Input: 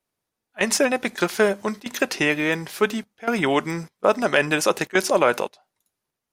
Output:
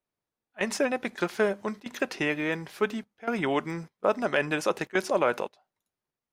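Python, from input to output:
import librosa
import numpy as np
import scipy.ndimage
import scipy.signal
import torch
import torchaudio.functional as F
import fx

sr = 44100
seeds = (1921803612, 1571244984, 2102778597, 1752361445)

y = fx.high_shelf(x, sr, hz=4500.0, db=-9.5)
y = y * 10.0 ** (-6.0 / 20.0)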